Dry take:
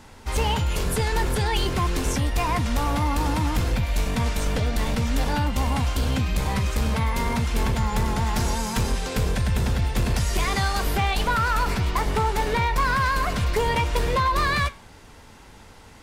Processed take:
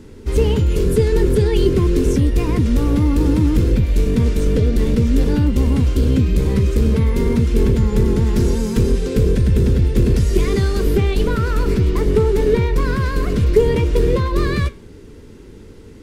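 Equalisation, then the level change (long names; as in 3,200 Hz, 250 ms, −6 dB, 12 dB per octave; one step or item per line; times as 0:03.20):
low shelf with overshoot 550 Hz +10.5 dB, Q 3
−2.5 dB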